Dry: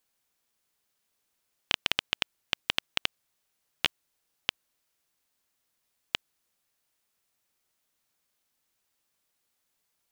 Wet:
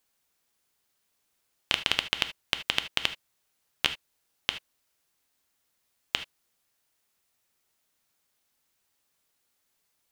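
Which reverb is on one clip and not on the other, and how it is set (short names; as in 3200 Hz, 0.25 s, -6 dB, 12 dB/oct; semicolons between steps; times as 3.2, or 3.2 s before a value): non-linear reverb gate 0.1 s flat, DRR 9 dB; gain +2 dB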